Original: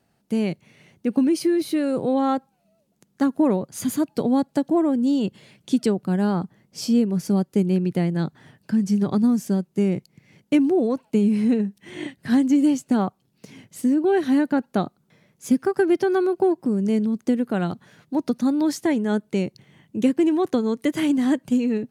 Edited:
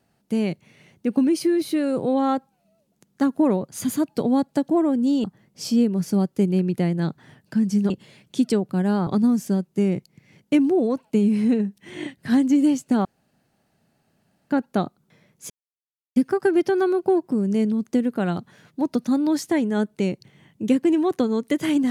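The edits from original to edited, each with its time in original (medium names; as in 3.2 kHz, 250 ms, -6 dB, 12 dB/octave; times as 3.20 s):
5.24–6.41 s: move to 9.07 s
13.05–14.50 s: room tone
15.50 s: insert silence 0.66 s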